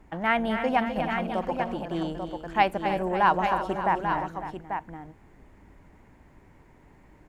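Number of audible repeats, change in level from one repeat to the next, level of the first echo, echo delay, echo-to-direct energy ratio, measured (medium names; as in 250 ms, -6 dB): 4, no regular repeats, -9.5 dB, 255 ms, -4.0 dB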